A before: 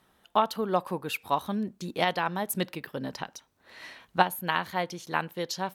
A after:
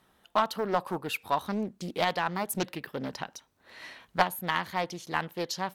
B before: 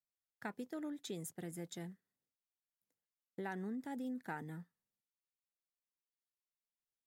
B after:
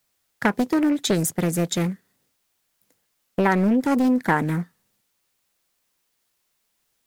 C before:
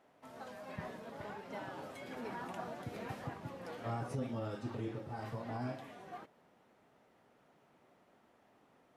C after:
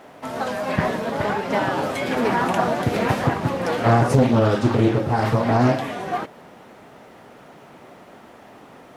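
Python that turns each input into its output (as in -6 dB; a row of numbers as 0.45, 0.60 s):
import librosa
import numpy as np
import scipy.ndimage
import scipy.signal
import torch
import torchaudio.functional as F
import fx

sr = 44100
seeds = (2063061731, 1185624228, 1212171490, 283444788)

p1 = 10.0 ** (-19.5 / 20.0) * (np.abs((x / 10.0 ** (-19.5 / 20.0) + 3.0) % 4.0 - 2.0) - 1.0)
p2 = x + (p1 * 10.0 ** (-11.0 / 20.0))
p3 = fx.doppler_dist(p2, sr, depth_ms=0.49)
y = p3 * 10.0 ** (-6 / 20.0) / np.max(np.abs(p3))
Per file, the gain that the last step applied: -2.5, +21.0, +21.0 dB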